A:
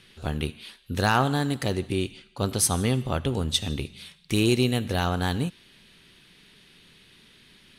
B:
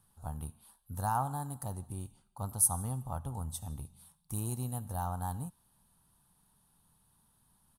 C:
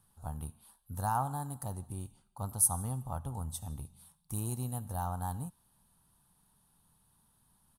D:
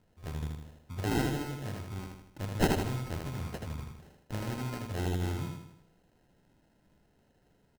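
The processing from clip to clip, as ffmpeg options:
-af "firequalizer=gain_entry='entry(100,0);entry(380,-17);entry(850,5);entry(2100,-26);entry(10000,8)':delay=0.05:min_phase=1,volume=-8.5dB"
-af anull
-filter_complex "[0:a]acrusher=samples=38:mix=1:aa=0.000001,asplit=2[a][b];[b]aecho=0:1:79|158|237|316|395|474:0.668|0.327|0.16|0.0786|0.0385|0.0189[c];[a][c]amix=inputs=2:normalize=0"

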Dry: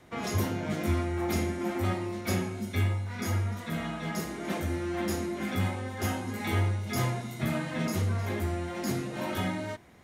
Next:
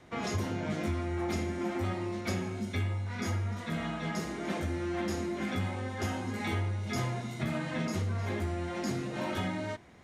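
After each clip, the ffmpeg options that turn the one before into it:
-af "lowpass=8k,acompressor=threshold=-29dB:ratio=4"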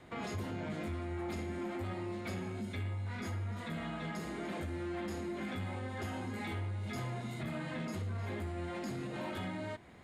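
-af "asoftclip=type=tanh:threshold=-25.5dB,alimiter=level_in=8.5dB:limit=-24dB:level=0:latency=1:release=202,volume=-8.5dB,equalizer=f=5.8k:t=o:w=0.24:g=-11.5"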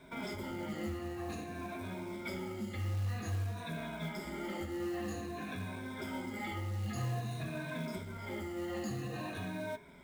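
-af "afftfilt=real='re*pow(10,16/40*sin(2*PI*(1.6*log(max(b,1)*sr/1024/100)/log(2)-(-0.51)*(pts-256)/sr)))':imag='im*pow(10,16/40*sin(2*PI*(1.6*log(max(b,1)*sr/1024/100)/log(2)-(-0.51)*(pts-256)/sr)))':win_size=1024:overlap=0.75,bandreject=f=83.64:t=h:w=4,bandreject=f=167.28:t=h:w=4,bandreject=f=250.92:t=h:w=4,bandreject=f=334.56:t=h:w=4,bandreject=f=418.2:t=h:w=4,bandreject=f=501.84:t=h:w=4,bandreject=f=585.48:t=h:w=4,bandreject=f=669.12:t=h:w=4,bandreject=f=752.76:t=h:w=4,bandreject=f=836.4:t=h:w=4,bandreject=f=920.04:t=h:w=4,bandreject=f=1.00368k:t=h:w=4,bandreject=f=1.08732k:t=h:w=4,bandreject=f=1.17096k:t=h:w=4,bandreject=f=1.2546k:t=h:w=4,bandreject=f=1.33824k:t=h:w=4,bandreject=f=1.42188k:t=h:w=4,bandreject=f=1.50552k:t=h:w=4,bandreject=f=1.58916k:t=h:w=4,bandreject=f=1.6728k:t=h:w=4,bandreject=f=1.75644k:t=h:w=4,bandreject=f=1.84008k:t=h:w=4,bandreject=f=1.92372k:t=h:w=4,bandreject=f=2.00736k:t=h:w=4,bandreject=f=2.091k:t=h:w=4,bandreject=f=2.17464k:t=h:w=4,bandreject=f=2.25828k:t=h:w=4,bandreject=f=2.34192k:t=h:w=4,bandreject=f=2.42556k:t=h:w=4,acrusher=bits=5:mode=log:mix=0:aa=0.000001,volume=-2.5dB"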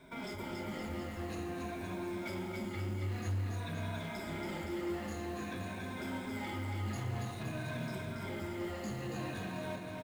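-filter_complex "[0:a]asoftclip=type=hard:threshold=-36dB,asplit=2[a][b];[b]aecho=0:1:280|518|720.3|892.3|1038:0.631|0.398|0.251|0.158|0.1[c];[a][c]amix=inputs=2:normalize=0,volume=-1dB"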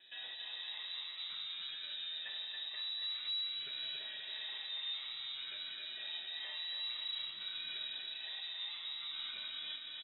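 -af "lowpass=f=3.4k:t=q:w=0.5098,lowpass=f=3.4k:t=q:w=0.6013,lowpass=f=3.4k:t=q:w=0.9,lowpass=f=3.4k:t=q:w=2.563,afreqshift=-4000,volume=-4dB"

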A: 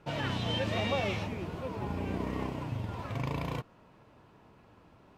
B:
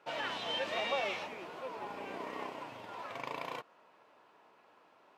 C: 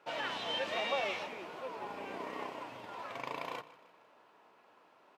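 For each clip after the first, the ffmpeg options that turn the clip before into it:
-af "highpass=550,highshelf=f=6k:g=-6"
-af "bandreject=f=50:t=h:w=6,bandreject=f=100:t=h:w=6,bandreject=f=150:t=h:w=6,aecho=1:1:154|308|462|616:0.126|0.0604|0.029|0.0139"

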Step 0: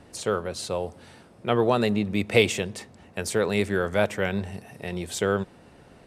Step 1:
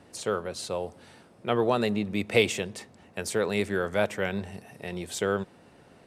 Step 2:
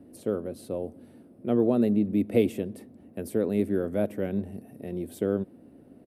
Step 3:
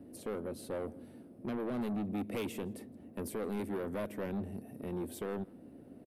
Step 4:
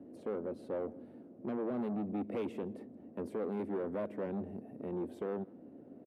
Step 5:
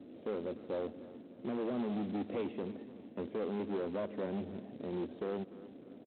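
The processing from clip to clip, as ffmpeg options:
-af "highpass=f=110:p=1,volume=-2.5dB"
-af "firequalizer=gain_entry='entry(170,0);entry(260,11);entry(410,0);entry(620,-2);entry(880,-13);entry(6900,-20);entry(11000,0)':delay=0.05:min_phase=1"
-filter_complex "[0:a]acrossover=split=1100[a][b];[a]alimiter=limit=-20dB:level=0:latency=1:release=298[c];[c][b]amix=inputs=2:normalize=0,asoftclip=type=tanh:threshold=-31.5dB,asplit=2[d][e];[e]adelay=163.3,volume=-25dB,highshelf=f=4k:g=-3.67[f];[d][f]amix=inputs=2:normalize=0,volume=-1dB"
-af "bandpass=f=460:t=q:w=0.54:csg=0,volume=1.5dB"
-af "aresample=8000,acrusher=bits=5:mode=log:mix=0:aa=0.000001,aresample=44100,aecho=1:1:300|600|900|1200:0.141|0.0607|0.0261|0.0112"

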